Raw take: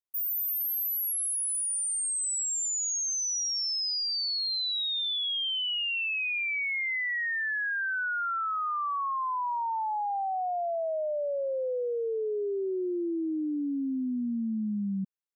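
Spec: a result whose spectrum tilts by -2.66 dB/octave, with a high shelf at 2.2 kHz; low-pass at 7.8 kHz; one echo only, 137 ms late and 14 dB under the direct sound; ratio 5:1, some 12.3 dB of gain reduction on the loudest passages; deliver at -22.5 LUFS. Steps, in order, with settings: low-pass 7.8 kHz; treble shelf 2.2 kHz -8 dB; compression 5:1, threshold -44 dBFS; delay 137 ms -14 dB; trim +20 dB

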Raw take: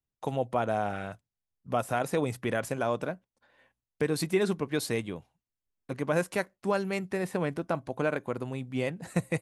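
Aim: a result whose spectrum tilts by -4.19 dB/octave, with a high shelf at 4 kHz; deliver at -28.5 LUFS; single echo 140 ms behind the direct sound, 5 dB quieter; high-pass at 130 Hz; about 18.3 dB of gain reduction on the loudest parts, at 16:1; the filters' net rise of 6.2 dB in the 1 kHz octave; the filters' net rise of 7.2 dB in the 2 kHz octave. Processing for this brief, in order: high-pass 130 Hz; peaking EQ 1 kHz +7 dB; peaking EQ 2 kHz +5 dB; treble shelf 4 kHz +8 dB; compression 16:1, threshold -37 dBFS; delay 140 ms -5 dB; trim +13.5 dB

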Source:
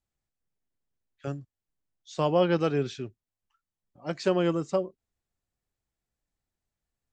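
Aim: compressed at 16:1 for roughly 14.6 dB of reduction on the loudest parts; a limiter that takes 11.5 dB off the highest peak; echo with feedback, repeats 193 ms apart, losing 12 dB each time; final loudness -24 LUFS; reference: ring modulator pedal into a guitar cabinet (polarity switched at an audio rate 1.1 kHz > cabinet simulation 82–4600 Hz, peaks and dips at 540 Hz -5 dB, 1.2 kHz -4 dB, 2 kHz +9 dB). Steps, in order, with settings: compression 16:1, threshold -33 dBFS; peak limiter -31.5 dBFS; feedback delay 193 ms, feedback 25%, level -12 dB; polarity switched at an audio rate 1.1 kHz; cabinet simulation 82–4600 Hz, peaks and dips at 540 Hz -5 dB, 1.2 kHz -4 dB, 2 kHz +9 dB; trim +18 dB

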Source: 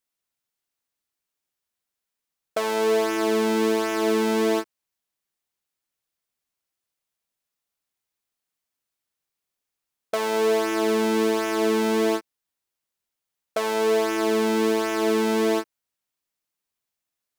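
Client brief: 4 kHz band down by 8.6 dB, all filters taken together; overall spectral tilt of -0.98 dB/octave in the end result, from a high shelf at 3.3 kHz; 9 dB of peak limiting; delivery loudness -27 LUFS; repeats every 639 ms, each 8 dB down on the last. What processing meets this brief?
treble shelf 3.3 kHz -6.5 dB; peaking EQ 4 kHz -7 dB; peak limiter -21 dBFS; feedback delay 639 ms, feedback 40%, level -8 dB; trim +3 dB

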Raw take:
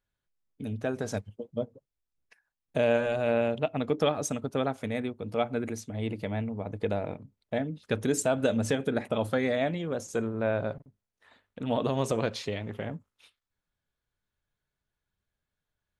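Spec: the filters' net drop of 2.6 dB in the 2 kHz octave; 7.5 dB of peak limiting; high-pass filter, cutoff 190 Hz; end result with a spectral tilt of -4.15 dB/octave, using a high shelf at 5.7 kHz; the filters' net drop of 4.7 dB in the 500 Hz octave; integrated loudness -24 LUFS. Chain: high-pass 190 Hz; peaking EQ 500 Hz -5.5 dB; peaking EQ 2 kHz -4 dB; treble shelf 5.7 kHz +6.5 dB; trim +11.5 dB; peak limiter -9.5 dBFS

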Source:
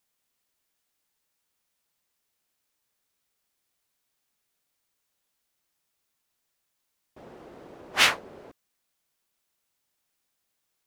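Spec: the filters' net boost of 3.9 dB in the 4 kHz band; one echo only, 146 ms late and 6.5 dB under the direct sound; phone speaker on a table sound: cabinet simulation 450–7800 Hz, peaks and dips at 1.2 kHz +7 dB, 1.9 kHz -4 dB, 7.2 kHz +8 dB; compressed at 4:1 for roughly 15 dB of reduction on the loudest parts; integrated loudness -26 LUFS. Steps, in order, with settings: peaking EQ 4 kHz +5 dB; compression 4:1, threshold -31 dBFS; cabinet simulation 450–7800 Hz, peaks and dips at 1.2 kHz +7 dB, 1.9 kHz -4 dB, 7.2 kHz +8 dB; delay 146 ms -6.5 dB; trim +11 dB

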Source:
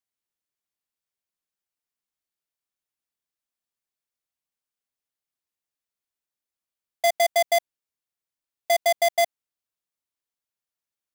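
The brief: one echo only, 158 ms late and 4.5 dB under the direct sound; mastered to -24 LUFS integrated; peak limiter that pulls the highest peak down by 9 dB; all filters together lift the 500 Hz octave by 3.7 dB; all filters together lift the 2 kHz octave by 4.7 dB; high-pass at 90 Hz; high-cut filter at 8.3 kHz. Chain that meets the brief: high-pass 90 Hz; low-pass 8.3 kHz; peaking EQ 500 Hz +6 dB; peaking EQ 2 kHz +4.5 dB; peak limiter -21.5 dBFS; delay 158 ms -4.5 dB; trim +2.5 dB

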